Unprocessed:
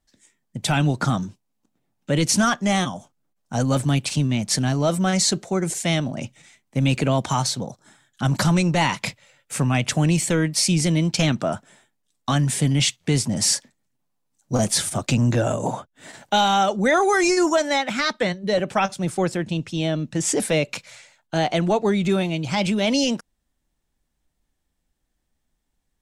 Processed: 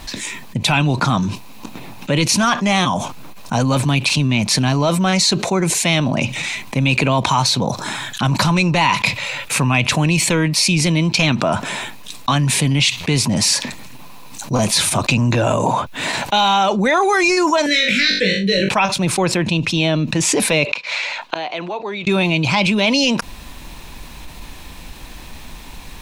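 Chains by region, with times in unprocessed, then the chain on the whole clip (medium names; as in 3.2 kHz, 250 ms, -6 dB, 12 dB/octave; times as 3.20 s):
17.66–18.69 s: elliptic band-stop 510–1600 Hz, stop band 50 dB + flutter echo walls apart 3.5 m, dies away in 0.29 s
20.65–22.07 s: three-band isolator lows -18 dB, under 280 Hz, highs -19 dB, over 5.7 kHz + inverted gate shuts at -27 dBFS, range -29 dB
whole clip: graphic EQ with 31 bands 1 kHz +10 dB, 2.5 kHz +11 dB, 4 kHz +7 dB, 8 kHz -4 dB; level flattener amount 70%; trim -1 dB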